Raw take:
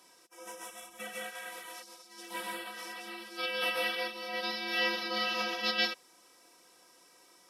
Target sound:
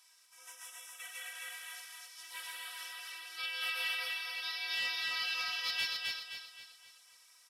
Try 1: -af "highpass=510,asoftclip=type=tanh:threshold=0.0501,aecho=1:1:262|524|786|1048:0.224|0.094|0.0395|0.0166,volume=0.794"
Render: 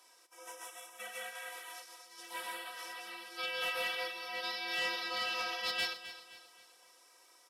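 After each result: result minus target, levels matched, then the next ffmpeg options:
500 Hz band +15.5 dB; echo-to-direct -10.5 dB
-af "highpass=1700,asoftclip=type=tanh:threshold=0.0501,aecho=1:1:262|524|786|1048:0.224|0.094|0.0395|0.0166,volume=0.794"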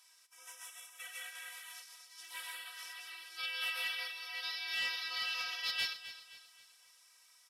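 echo-to-direct -10.5 dB
-af "highpass=1700,asoftclip=type=tanh:threshold=0.0501,aecho=1:1:262|524|786|1048|1310:0.75|0.315|0.132|0.0556|0.0233,volume=0.794"

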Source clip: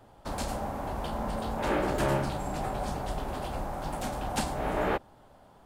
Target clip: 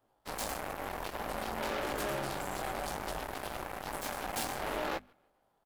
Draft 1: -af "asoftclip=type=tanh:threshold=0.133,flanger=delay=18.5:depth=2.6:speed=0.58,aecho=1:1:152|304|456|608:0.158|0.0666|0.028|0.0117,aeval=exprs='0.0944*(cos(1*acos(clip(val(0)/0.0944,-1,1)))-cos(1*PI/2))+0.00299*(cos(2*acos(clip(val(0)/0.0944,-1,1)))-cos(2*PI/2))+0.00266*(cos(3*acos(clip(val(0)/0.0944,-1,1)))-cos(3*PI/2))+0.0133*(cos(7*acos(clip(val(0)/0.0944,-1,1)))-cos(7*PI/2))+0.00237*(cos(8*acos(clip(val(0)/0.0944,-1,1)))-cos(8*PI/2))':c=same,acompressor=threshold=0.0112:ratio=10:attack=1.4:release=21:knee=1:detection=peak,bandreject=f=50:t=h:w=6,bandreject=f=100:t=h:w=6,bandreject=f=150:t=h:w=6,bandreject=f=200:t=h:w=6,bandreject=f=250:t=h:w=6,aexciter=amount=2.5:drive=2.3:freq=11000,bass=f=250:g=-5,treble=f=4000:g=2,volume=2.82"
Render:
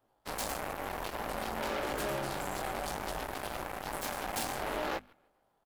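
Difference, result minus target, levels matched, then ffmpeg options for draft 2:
saturation: distortion -9 dB
-af "asoftclip=type=tanh:threshold=0.0631,flanger=delay=18.5:depth=2.6:speed=0.58,aecho=1:1:152|304|456|608:0.158|0.0666|0.028|0.0117,aeval=exprs='0.0944*(cos(1*acos(clip(val(0)/0.0944,-1,1)))-cos(1*PI/2))+0.00299*(cos(2*acos(clip(val(0)/0.0944,-1,1)))-cos(2*PI/2))+0.00266*(cos(3*acos(clip(val(0)/0.0944,-1,1)))-cos(3*PI/2))+0.0133*(cos(7*acos(clip(val(0)/0.0944,-1,1)))-cos(7*PI/2))+0.00237*(cos(8*acos(clip(val(0)/0.0944,-1,1)))-cos(8*PI/2))':c=same,acompressor=threshold=0.0112:ratio=10:attack=1.4:release=21:knee=1:detection=peak,bandreject=f=50:t=h:w=6,bandreject=f=100:t=h:w=6,bandreject=f=150:t=h:w=6,bandreject=f=200:t=h:w=6,bandreject=f=250:t=h:w=6,aexciter=amount=2.5:drive=2.3:freq=11000,bass=f=250:g=-5,treble=f=4000:g=2,volume=2.82"

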